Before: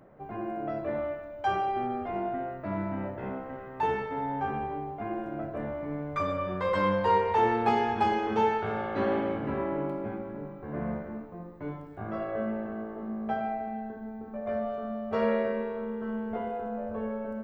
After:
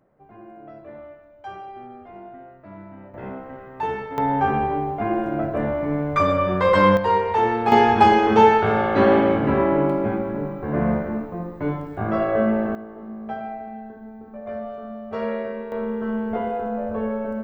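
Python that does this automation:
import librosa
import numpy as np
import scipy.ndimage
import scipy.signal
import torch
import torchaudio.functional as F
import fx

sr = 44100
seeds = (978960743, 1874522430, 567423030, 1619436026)

y = fx.gain(x, sr, db=fx.steps((0.0, -8.5), (3.14, 2.0), (4.18, 11.0), (6.97, 4.5), (7.72, 12.0), (12.75, 0.0), (15.72, 8.0)))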